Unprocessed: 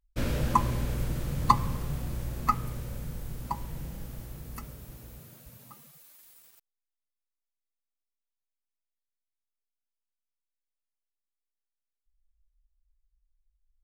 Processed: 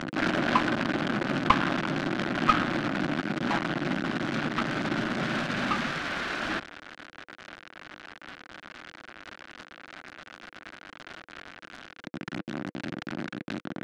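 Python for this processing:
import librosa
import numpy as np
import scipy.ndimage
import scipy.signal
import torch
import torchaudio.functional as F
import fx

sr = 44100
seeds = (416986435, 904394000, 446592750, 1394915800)

y = fx.delta_mod(x, sr, bps=64000, step_db=-17.5)
y = fx.cabinet(y, sr, low_hz=190.0, low_slope=24, high_hz=2500.0, hz=(310.0, 440.0, 930.0, 1500.0), db=(4, -9, -6, 7))
y = fx.notch(y, sr, hz=490.0, q=12.0)
y = fx.noise_mod_delay(y, sr, seeds[0], noise_hz=1300.0, depth_ms=0.048)
y = y * 10.0 ** (2.0 / 20.0)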